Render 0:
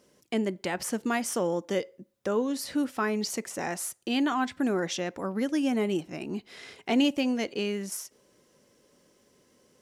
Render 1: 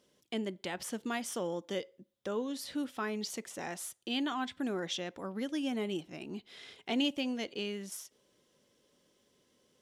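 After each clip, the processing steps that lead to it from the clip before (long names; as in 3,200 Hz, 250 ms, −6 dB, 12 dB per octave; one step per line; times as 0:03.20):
parametric band 3,400 Hz +9 dB 0.47 octaves
level −8 dB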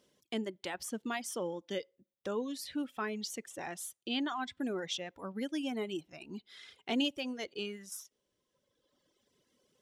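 reverb reduction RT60 1.9 s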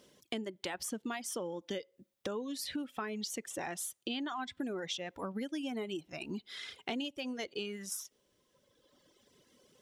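downward compressor 6 to 1, threshold −44 dBFS, peak gain reduction 15.5 dB
level +8 dB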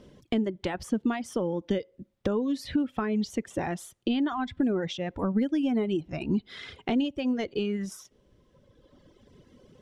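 RIAA equalisation playback
level +6.5 dB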